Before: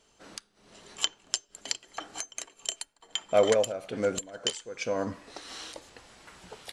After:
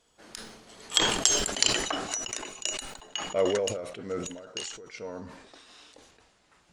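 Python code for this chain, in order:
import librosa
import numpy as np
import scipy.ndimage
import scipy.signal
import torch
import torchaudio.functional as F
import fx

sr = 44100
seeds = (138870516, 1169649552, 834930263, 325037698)

y = fx.doppler_pass(x, sr, speed_mps=27, closest_m=14.0, pass_at_s=1.48)
y = fx.sustainer(y, sr, db_per_s=53.0)
y = F.gain(torch.from_numpy(y), 7.0).numpy()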